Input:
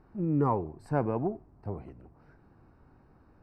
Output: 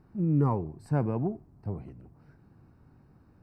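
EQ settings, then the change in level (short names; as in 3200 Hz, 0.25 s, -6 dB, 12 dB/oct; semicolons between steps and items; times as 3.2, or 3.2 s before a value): bell 140 Hz +11 dB 2.3 oct; high shelf 2400 Hz +9.5 dB; -6.0 dB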